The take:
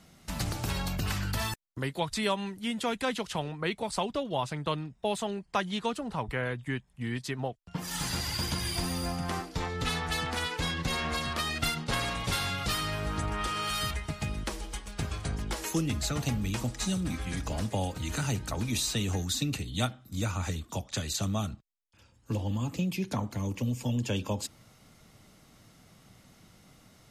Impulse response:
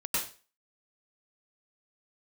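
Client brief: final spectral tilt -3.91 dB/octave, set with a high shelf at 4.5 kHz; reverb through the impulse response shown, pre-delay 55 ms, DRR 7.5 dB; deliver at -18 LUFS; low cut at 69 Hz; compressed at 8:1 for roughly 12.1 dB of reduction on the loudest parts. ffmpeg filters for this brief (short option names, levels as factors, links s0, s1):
-filter_complex "[0:a]highpass=69,highshelf=f=4500:g=8.5,acompressor=threshold=0.0158:ratio=8,asplit=2[s0][s1];[1:a]atrim=start_sample=2205,adelay=55[s2];[s1][s2]afir=irnorm=-1:irlink=0,volume=0.188[s3];[s0][s3]amix=inputs=2:normalize=0,volume=10.6"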